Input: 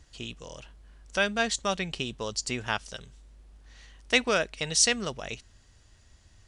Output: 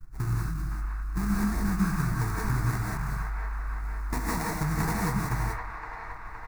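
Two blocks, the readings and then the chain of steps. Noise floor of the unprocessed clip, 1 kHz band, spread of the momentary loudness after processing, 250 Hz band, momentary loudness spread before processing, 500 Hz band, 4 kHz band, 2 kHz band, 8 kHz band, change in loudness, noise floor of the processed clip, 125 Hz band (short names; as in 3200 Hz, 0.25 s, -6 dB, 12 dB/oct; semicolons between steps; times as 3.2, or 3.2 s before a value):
-59 dBFS, +2.0 dB, 8 LU, +6.5 dB, 19 LU, -9.5 dB, -16.5 dB, -5.0 dB, -11.0 dB, -2.5 dB, -40 dBFS, +14.5 dB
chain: spectral delete 0.32–1.9, 400–1700 Hz; expander -52 dBFS; tilt -2.5 dB/oct; comb 6.5 ms, depth 90%; dynamic EQ 110 Hz, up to +7 dB, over -43 dBFS, Q 1.2; compressor, threshold -28 dBFS, peak gain reduction 12 dB; sample-rate reducer 1400 Hz, jitter 20%; fixed phaser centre 1300 Hz, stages 4; on a send: band-limited delay 0.515 s, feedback 65%, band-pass 1300 Hz, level -3.5 dB; on the sum: non-linear reverb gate 0.21 s rising, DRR -3 dB; gain +2 dB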